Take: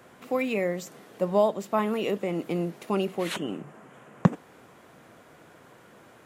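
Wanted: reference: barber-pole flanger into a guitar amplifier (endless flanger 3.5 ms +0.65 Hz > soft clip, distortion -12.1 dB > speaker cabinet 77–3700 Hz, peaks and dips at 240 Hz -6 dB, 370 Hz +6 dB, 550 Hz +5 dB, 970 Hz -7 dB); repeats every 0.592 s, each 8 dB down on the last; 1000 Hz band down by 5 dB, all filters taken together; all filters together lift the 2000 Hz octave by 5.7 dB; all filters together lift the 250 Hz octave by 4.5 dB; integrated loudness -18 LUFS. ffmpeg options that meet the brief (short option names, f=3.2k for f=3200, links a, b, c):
-filter_complex "[0:a]equalizer=f=250:t=o:g=7.5,equalizer=f=1k:t=o:g=-6,equalizer=f=2k:t=o:g=8.5,aecho=1:1:592|1184|1776|2368|2960:0.398|0.159|0.0637|0.0255|0.0102,asplit=2[a][b];[b]adelay=3.5,afreqshift=0.65[c];[a][c]amix=inputs=2:normalize=1,asoftclip=threshold=-20.5dB,highpass=77,equalizer=f=240:t=q:w=4:g=-6,equalizer=f=370:t=q:w=4:g=6,equalizer=f=550:t=q:w=4:g=5,equalizer=f=970:t=q:w=4:g=-7,lowpass=f=3.7k:w=0.5412,lowpass=f=3.7k:w=1.3066,volume=12.5dB"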